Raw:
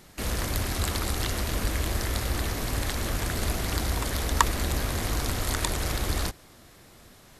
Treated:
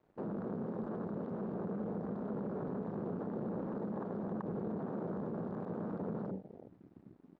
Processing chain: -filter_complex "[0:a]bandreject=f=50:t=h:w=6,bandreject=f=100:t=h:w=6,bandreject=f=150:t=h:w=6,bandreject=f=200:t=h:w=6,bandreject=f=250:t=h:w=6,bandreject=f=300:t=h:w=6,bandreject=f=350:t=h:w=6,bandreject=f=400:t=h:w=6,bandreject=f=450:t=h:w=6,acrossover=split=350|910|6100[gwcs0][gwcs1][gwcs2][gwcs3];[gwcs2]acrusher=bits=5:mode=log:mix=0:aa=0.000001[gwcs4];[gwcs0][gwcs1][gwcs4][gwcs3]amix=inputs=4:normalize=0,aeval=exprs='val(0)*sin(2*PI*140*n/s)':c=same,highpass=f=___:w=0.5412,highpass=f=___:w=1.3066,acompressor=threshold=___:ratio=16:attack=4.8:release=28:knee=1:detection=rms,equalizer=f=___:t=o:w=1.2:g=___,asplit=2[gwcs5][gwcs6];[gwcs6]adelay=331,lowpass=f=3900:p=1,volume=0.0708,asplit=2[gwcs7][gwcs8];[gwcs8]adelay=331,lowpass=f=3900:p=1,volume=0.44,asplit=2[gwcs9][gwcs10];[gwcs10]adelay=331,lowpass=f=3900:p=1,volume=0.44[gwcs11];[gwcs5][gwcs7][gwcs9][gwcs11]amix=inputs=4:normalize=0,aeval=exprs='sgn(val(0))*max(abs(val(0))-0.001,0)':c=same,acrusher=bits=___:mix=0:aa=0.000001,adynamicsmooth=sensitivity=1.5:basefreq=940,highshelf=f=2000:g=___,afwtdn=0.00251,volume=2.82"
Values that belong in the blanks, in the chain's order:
150, 150, 0.00631, 430, 6.5, 8, 2